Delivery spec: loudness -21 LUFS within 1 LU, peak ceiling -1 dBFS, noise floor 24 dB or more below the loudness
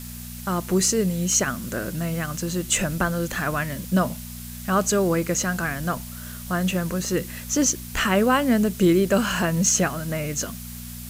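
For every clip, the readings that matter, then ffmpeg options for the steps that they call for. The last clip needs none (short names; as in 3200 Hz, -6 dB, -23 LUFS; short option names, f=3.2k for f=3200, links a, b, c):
hum 60 Hz; harmonics up to 240 Hz; hum level -37 dBFS; noise floor -37 dBFS; noise floor target -47 dBFS; loudness -23.0 LUFS; peak -6.0 dBFS; loudness target -21.0 LUFS
-> -af "bandreject=f=60:t=h:w=4,bandreject=f=120:t=h:w=4,bandreject=f=180:t=h:w=4,bandreject=f=240:t=h:w=4"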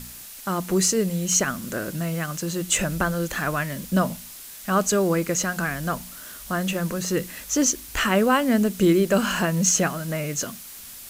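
hum none; noise floor -41 dBFS; noise floor target -48 dBFS
-> -af "afftdn=nr=7:nf=-41"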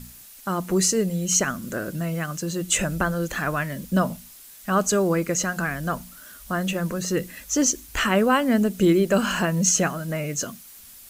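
noise floor -46 dBFS; noise floor target -48 dBFS
-> -af "afftdn=nr=6:nf=-46"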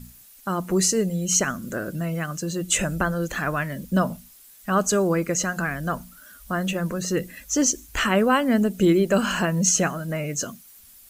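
noise floor -50 dBFS; loudness -23.5 LUFS; peak -6.5 dBFS; loudness target -21.0 LUFS
-> -af "volume=2.5dB"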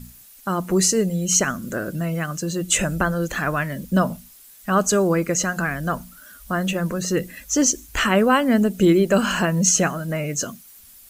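loudness -21.0 LUFS; peak -4.0 dBFS; noise floor -47 dBFS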